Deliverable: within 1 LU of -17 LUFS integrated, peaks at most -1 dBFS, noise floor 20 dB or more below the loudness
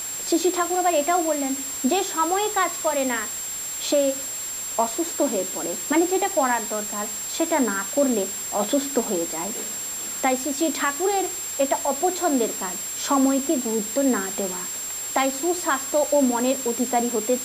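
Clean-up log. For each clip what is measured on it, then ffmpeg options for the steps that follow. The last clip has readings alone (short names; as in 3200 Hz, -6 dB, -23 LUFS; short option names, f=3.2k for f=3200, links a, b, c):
steady tone 7500 Hz; tone level -29 dBFS; noise floor -31 dBFS; noise floor target -43 dBFS; loudness -23.0 LUFS; peak -8.0 dBFS; loudness target -17.0 LUFS
-> -af "bandreject=f=7.5k:w=30"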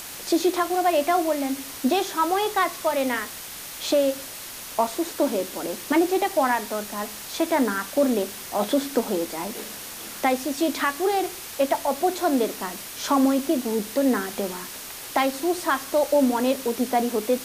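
steady tone none; noise floor -38 dBFS; noise floor target -45 dBFS
-> -af "afftdn=nr=7:nf=-38"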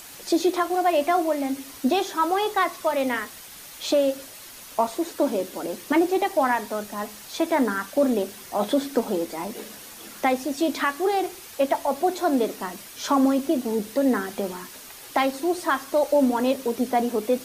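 noise floor -43 dBFS; noise floor target -45 dBFS
-> -af "afftdn=nr=6:nf=-43"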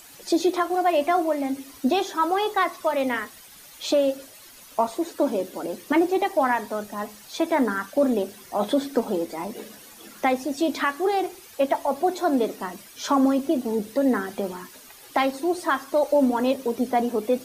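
noise floor -47 dBFS; loudness -24.5 LUFS; peak -9.0 dBFS; loudness target -17.0 LUFS
-> -af "volume=7.5dB"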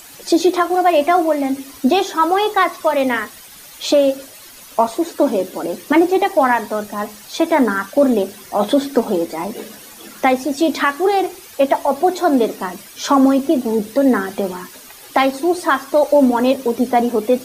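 loudness -17.0 LUFS; peak -1.5 dBFS; noise floor -40 dBFS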